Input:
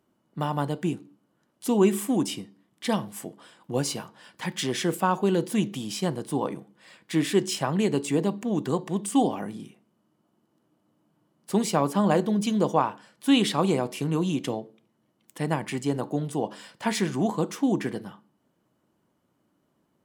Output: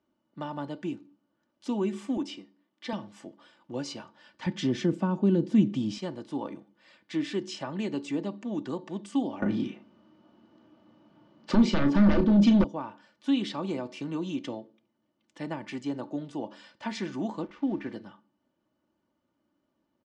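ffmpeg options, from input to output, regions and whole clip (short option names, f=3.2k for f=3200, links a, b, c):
-filter_complex "[0:a]asettb=1/sr,asplit=3[a][b][c];[a]atrim=end=2.174[d];[b]atrim=start=2.17:end=2.93,asetpts=PTS-STARTPTS,afade=t=in:d=0.004:c=qsin,afade=t=out:st=0.756:d=0.004:c=qsin,highpass=240,highshelf=f=9.8k:g=-11[e];[c]atrim=start=2.926[f];[d][e]acrossfade=d=0.004:c1=hsin:c2=qsin[g];[g][f]acrossfade=d=0.004:c1=qsin:c2=hsin,asettb=1/sr,asplit=3[h][i][j];[h]atrim=end=4.464[k];[i]atrim=start=4.46:end=5.98,asetpts=PTS-STARTPTS,afade=t=in:d=0.004:c=qsin,afade=t=out:st=1.516:d=0.004:c=qsin,highpass=53,equalizer=f=120:w=0.34:g=14[l];[j]atrim=start=5.976[m];[k][l]acrossfade=d=0.004:c1=hsin:c2=qsin[n];[n][m]acrossfade=d=0.004:c1=qsin:c2=hsin,asettb=1/sr,asplit=3[o][p][q];[o]atrim=end=9.424[r];[p]atrim=start=9.42:end=12.64,asetpts=PTS-STARTPTS,afade=t=in:d=0.004:c=qsin,afade=t=out:st=3.216:d=0.004:c=qsin,lowpass=4.5k,aeval=exprs='0.422*sin(PI/2*3.98*val(0)/0.422)':c=same,asplit=2[s][t];[t]adelay=35,volume=-9dB[u];[s][u]amix=inputs=2:normalize=0,atrim=end_sample=142002[v];[q]atrim=start=12.636[w];[r][v]acrossfade=d=0.004:c1=hsin:c2=qsin[x];[x][w]acrossfade=d=0.004:c1=qsin:c2=hsin,asettb=1/sr,asplit=3[y][z][aa];[y]atrim=end=17.424[ab];[z]atrim=start=17.42:end=17.9,asetpts=PTS-STARTPTS,afade=t=in:d=0.004:c=qsin,afade=t=out:st=0.476:d=0.004:c=qsin,lowpass=f=3k:w=0.5412,lowpass=f=3k:w=1.3066,aeval=exprs='sgn(val(0))*max(abs(val(0))-0.00398,0)':c=same[ac];[aa]atrim=start=17.896[ad];[ab][ac]acrossfade=d=0.004:c1=hsin:c2=qsin[ae];[ae][ad]acrossfade=d=0.004:c1=qsin:c2=hsin,lowpass=f=6k:w=0.5412,lowpass=f=6k:w=1.3066,aecho=1:1:3.4:0.49,acrossover=split=330[af][ag];[ag]acompressor=threshold=-26dB:ratio=4[ah];[af][ah]amix=inputs=2:normalize=0,volume=-7dB"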